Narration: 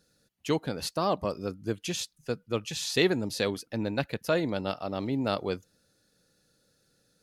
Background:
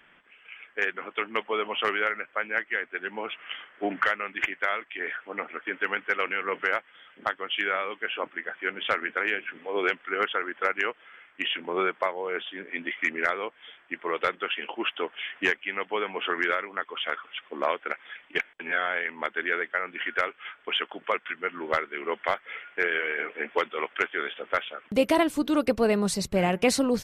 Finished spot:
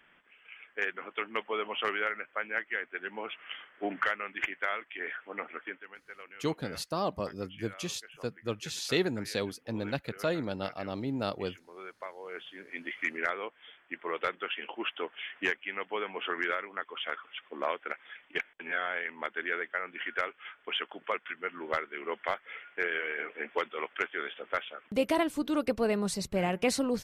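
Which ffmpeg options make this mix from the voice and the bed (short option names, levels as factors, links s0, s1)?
-filter_complex "[0:a]adelay=5950,volume=0.631[s0];[1:a]volume=3.35,afade=t=out:st=5.62:d=0.21:silence=0.158489,afade=t=in:st=11.79:d=1.26:silence=0.16788[s1];[s0][s1]amix=inputs=2:normalize=0"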